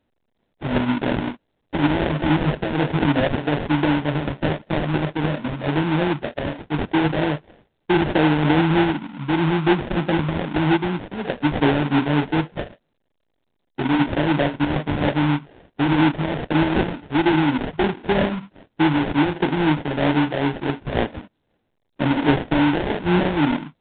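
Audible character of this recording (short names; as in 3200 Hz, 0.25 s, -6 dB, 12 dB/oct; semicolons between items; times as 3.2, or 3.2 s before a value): phasing stages 12, 3.2 Hz, lowest notch 730–2200 Hz; aliases and images of a low sample rate 1200 Hz, jitter 20%; A-law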